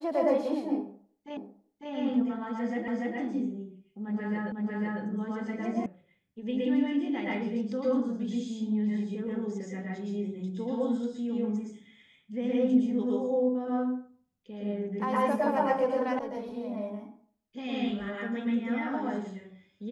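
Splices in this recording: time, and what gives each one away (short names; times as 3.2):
1.37 repeat of the last 0.55 s
2.88 repeat of the last 0.29 s
4.52 repeat of the last 0.5 s
5.86 sound cut off
16.19 sound cut off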